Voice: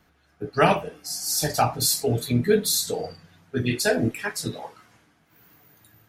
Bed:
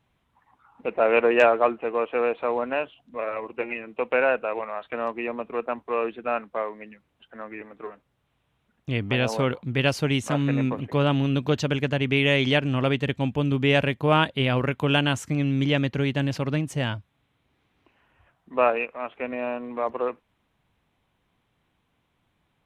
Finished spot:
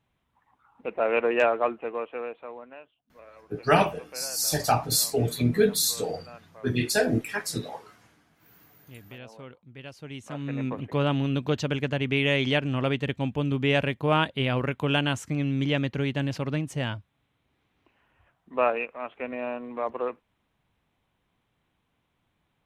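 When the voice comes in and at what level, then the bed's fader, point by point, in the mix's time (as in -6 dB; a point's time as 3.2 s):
3.10 s, -1.5 dB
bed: 1.85 s -4.5 dB
2.83 s -20.5 dB
9.89 s -20.5 dB
10.78 s -3 dB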